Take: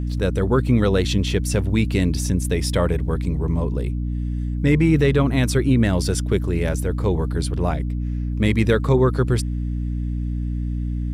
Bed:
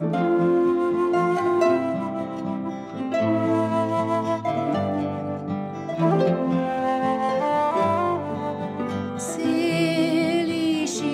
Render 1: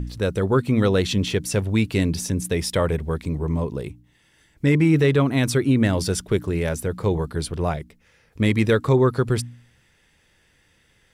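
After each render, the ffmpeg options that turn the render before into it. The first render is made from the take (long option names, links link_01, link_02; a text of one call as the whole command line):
ffmpeg -i in.wav -af "bandreject=frequency=60:width_type=h:width=4,bandreject=frequency=120:width_type=h:width=4,bandreject=frequency=180:width_type=h:width=4,bandreject=frequency=240:width_type=h:width=4,bandreject=frequency=300:width_type=h:width=4" out.wav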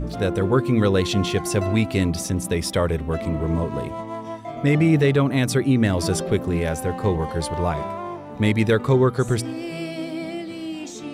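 ffmpeg -i in.wav -i bed.wav -filter_complex "[1:a]volume=-8.5dB[link_01];[0:a][link_01]amix=inputs=2:normalize=0" out.wav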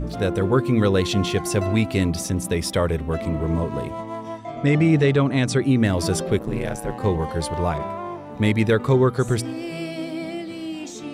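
ffmpeg -i in.wav -filter_complex "[0:a]asettb=1/sr,asplit=3[link_01][link_02][link_03];[link_01]atrim=end=4.384[link_04];[link_02]atrim=start=4.38:end=5.63,asetpts=PTS-STARTPTS,afade=type=in:duration=0.004:curve=qsin,afade=type=out:start_time=1.246:duration=0.004:curve=qsin,lowpass=frequency=8800:width=0.5412,lowpass=frequency=8800:width=1.3066[link_05];[link_03]atrim=start=5.626[link_06];[link_04][link_05]acrossfade=duration=0.004:curve1=hsin:curve2=qsin[link_07];[link_07][link_06]acrossfade=duration=0.004:curve1=qsin:curve2=hsin,asplit=3[link_08][link_09][link_10];[link_08]afade=type=out:start_time=6.38:duration=0.02[link_11];[link_09]aeval=exprs='val(0)*sin(2*PI*55*n/s)':channel_layout=same,afade=type=in:start_time=6.38:duration=0.02,afade=type=out:start_time=6.98:duration=0.02[link_12];[link_10]afade=type=in:start_time=6.98:duration=0.02[link_13];[link_11][link_12][link_13]amix=inputs=3:normalize=0,asettb=1/sr,asplit=3[link_14][link_15][link_16];[link_14]atrim=end=7.784[link_17];[link_15]atrim=start=7.78:end=8.81,asetpts=PTS-STARTPTS,afade=type=in:duration=0.004:curve=qsin,afade=type=out:start_time=1.026:duration=0.004:curve=qsin,adynamicequalizer=threshold=0.0112:dfrequency=3300:dqfactor=0.7:tfrequency=3300:tqfactor=0.7:attack=5:release=100:ratio=0.375:range=2.5:mode=cutabove:tftype=highshelf[link_18];[link_16]atrim=start=8.806[link_19];[link_17][link_18]acrossfade=duration=0.004:curve1=hsin:curve2=qsin[link_20];[link_20][link_19]acrossfade=duration=0.004:curve1=qsin:curve2=hsin" out.wav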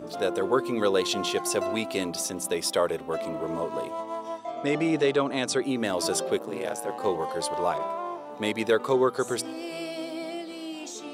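ffmpeg -i in.wav -af "highpass=430,equalizer=frequency=2000:width_type=o:width=0.77:gain=-6.5" out.wav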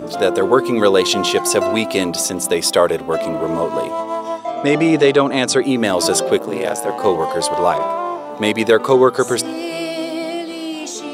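ffmpeg -i in.wav -af "volume=11dB,alimiter=limit=-1dB:level=0:latency=1" out.wav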